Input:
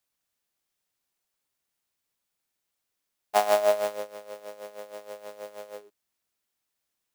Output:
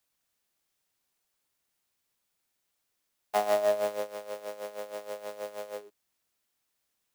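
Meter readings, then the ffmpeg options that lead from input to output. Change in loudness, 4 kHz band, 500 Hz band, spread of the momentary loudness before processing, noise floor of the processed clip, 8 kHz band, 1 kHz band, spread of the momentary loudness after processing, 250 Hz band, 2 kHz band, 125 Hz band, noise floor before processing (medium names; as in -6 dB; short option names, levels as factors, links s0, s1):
-7.5 dB, -5.0 dB, -2.5 dB, 20 LU, -80 dBFS, -5.0 dB, -5.0 dB, 14 LU, 0.0 dB, -4.0 dB, no reading, -83 dBFS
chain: -filter_complex "[0:a]acrossover=split=490[s0][s1];[s1]acompressor=threshold=0.0178:ratio=2[s2];[s0][s2]amix=inputs=2:normalize=0,asoftclip=type=tanh:threshold=0.126,volume=1.33"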